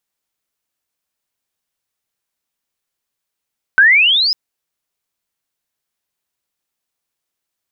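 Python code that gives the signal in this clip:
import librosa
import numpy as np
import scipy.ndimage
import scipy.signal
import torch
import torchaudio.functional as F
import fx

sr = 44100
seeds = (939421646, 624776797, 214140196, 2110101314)

y = fx.chirp(sr, length_s=0.55, from_hz=1500.0, to_hz=5200.0, law='logarithmic', from_db=-4.5, to_db=-12.5)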